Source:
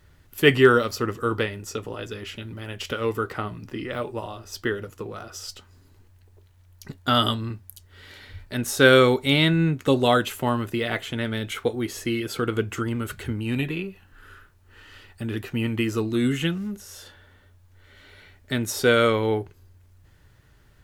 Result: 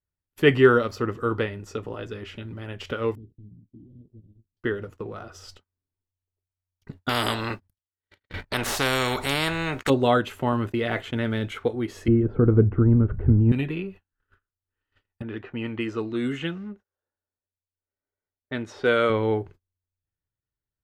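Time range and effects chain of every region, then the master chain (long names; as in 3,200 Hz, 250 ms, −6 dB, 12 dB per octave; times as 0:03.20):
0:03.15–0:04.57: variable-slope delta modulation 16 kbit/s + inverse Chebyshev band-stop filter 800–2,100 Hz, stop band 70 dB + downward compressor 5 to 1, threshold −41 dBFS
0:07.09–0:09.90: noise gate −43 dBFS, range −38 dB + every bin compressed towards the loudest bin 4 to 1
0:10.52–0:11.49: one scale factor per block 7 bits + downward expander −29 dBFS + envelope flattener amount 50%
0:12.08–0:13.52: low-pass filter 1,200 Hz + spectral tilt −4 dB per octave
0:15.22–0:19.10: low-pass that shuts in the quiet parts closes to 960 Hz, open at −18 dBFS + low-shelf EQ 210 Hz −11 dB
whole clip: noise gate −43 dBFS, range −35 dB; low-pass filter 1,900 Hz 6 dB per octave; every ending faded ahead of time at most 440 dB per second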